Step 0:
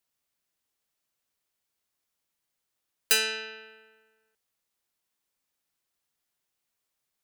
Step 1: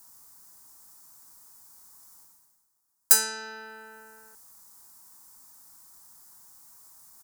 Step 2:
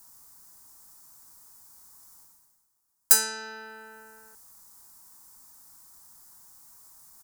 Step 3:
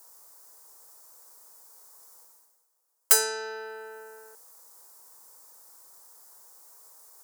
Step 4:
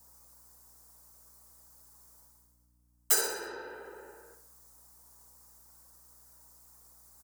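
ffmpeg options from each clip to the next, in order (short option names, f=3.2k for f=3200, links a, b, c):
-af "firequalizer=gain_entry='entry(260,0);entry(520,-9);entry(930,6);entry(2700,-19);entry(4900,1);entry(7700,7)':delay=0.05:min_phase=1,areverse,acompressor=mode=upward:threshold=-36dB:ratio=2.5,areverse,volume=1.5dB"
-af "lowshelf=f=91:g=5.5"
-af "areverse,acompressor=mode=upward:threshold=-54dB:ratio=2.5,areverse,aeval=exprs='clip(val(0),-1,0.2)':c=same,highpass=f=490:t=q:w=4.9"
-filter_complex "[0:a]afftfilt=real='hypot(re,im)*cos(2*PI*random(0))':imag='hypot(re,im)*sin(2*PI*random(1))':win_size=512:overlap=0.75,aeval=exprs='val(0)+0.000398*(sin(2*PI*60*n/s)+sin(2*PI*2*60*n/s)/2+sin(2*PI*3*60*n/s)/3+sin(2*PI*4*60*n/s)/4+sin(2*PI*5*60*n/s)/5)':c=same,asplit=2[a][b];[b]aecho=0:1:64|128|192|256|320:0.355|0.17|0.0817|0.0392|0.0188[c];[a][c]amix=inputs=2:normalize=0"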